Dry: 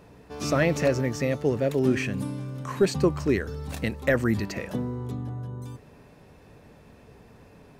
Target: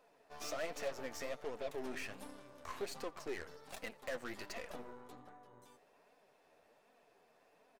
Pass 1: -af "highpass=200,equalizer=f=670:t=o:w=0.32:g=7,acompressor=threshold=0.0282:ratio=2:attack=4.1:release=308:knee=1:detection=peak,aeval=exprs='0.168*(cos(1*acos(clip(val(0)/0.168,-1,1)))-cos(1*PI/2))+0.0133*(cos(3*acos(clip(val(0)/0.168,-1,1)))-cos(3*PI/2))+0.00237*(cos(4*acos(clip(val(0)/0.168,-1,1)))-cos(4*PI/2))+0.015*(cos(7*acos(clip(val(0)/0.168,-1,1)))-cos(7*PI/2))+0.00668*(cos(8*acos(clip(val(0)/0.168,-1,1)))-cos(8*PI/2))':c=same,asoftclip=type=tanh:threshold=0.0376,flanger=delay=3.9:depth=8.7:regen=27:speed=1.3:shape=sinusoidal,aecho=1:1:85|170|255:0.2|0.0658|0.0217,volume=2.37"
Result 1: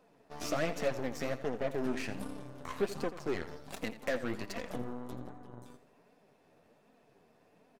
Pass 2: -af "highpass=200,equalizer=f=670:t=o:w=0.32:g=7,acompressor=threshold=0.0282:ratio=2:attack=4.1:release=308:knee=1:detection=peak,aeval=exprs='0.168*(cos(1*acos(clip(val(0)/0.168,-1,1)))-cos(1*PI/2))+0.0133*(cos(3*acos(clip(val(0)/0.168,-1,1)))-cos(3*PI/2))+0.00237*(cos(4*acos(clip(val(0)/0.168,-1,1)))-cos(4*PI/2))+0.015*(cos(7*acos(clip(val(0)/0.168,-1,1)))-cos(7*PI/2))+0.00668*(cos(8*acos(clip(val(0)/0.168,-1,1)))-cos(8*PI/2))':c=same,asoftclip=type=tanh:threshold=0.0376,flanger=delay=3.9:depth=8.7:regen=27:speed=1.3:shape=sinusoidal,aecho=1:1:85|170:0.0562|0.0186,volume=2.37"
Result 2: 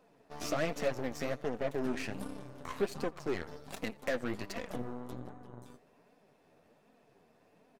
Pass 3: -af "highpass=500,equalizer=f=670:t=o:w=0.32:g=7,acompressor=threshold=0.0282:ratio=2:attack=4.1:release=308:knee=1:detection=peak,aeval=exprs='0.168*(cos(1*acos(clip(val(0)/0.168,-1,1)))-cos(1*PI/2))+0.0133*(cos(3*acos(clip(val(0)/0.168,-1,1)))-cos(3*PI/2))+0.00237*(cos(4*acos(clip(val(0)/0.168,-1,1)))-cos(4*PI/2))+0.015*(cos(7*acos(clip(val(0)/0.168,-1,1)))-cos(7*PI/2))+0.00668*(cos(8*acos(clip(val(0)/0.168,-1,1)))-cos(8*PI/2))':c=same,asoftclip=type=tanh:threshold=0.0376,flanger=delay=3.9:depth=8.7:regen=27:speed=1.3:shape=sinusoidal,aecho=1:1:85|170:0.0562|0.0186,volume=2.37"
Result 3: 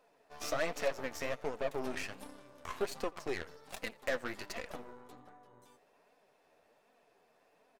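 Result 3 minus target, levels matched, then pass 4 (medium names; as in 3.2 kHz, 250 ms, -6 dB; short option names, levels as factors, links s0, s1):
saturation: distortion -8 dB
-af "highpass=500,equalizer=f=670:t=o:w=0.32:g=7,acompressor=threshold=0.0282:ratio=2:attack=4.1:release=308:knee=1:detection=peak,aeval=exprs='0.168*(cos(1*acos(clip(val(0)/0.168,-1,1)))-cos(1*PI/2))+0.0133*(cos(3*acos(clip(val(0)/0.168,-1,1)))-cos(3*PI/2))+0.00237*(cos(4*acos(clip(val(0)/0.168,-1,1)))-cos(4*PI/2))+0.015*(cos(7*acos(clip(val(0)/0.168,-1,1)))-cos(7*PI/2))+0.00668*(cos(8*acos(clip(val(0)/0.168,-1,1)))-cos(8*PI/2))':c=same,asoftclip=type=tanh:threshold=0.0112,flanger=delay=3.9:depth=8.7:regen=27:speed=1.3:shape=sinusoidal,aecho=1:1:85|170:0.0562|0.0186,volume=2.37"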